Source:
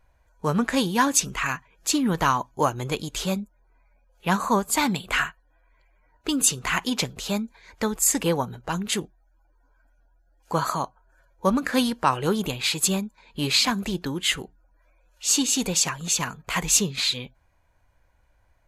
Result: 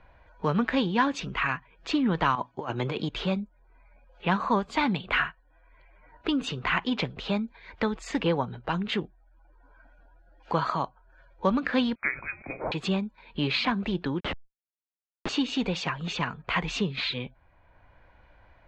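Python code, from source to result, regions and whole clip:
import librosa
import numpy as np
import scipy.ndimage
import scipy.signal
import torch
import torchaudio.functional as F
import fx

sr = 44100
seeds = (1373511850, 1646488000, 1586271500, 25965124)

y = fx.chain(x, sr, fx.highpass(hz=130.0, slope=12),
    fx.over_compress(threshold_db=-30.0, ratio=-1.0), at=(2.35, 3.09))
y = fx.chain(y, sr, fx.cheby_ripple_highpass(hz=510.0, ripple_db=9),
    fx.freq_invert(carrier_hz=3000), at=(11.95, 12.72))
y = fx.chain(y, sr, fx.high_shelf(hz=9100.0, db=8.0),
    fx.schmitt(flips_db=-19.5),
    fx.env_flatten(amount_pct=70), at=(14.2, 15.29))
y = scipy.signal.sosfilt(scipy.signal.butter(4, 3600.0, 'lowpass', fs=sr, output='sos'), y)
y = fx.band_squash(y, sr, depth_pct=40)
y = y * librosa.db_to_amplitude(-1.5)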